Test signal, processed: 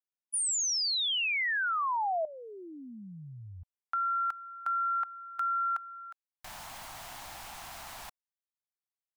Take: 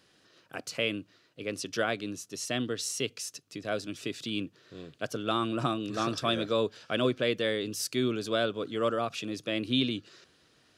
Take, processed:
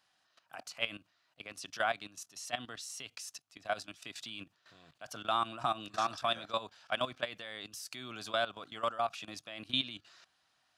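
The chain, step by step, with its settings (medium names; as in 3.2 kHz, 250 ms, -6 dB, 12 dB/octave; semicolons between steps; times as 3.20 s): resonant low shelf 580 Hz -9 dB, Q 3; level held to a coarse grid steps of 15 dB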